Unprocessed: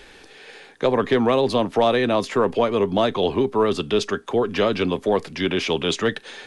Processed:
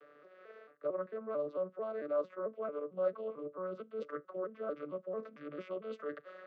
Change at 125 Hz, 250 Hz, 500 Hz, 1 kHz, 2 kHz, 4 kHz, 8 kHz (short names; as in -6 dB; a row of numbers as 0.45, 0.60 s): under -25 dB, -24.0 dB, -16.5 dB, -22.0 dB, -24.5 dB, under -35 dB, under -40 dB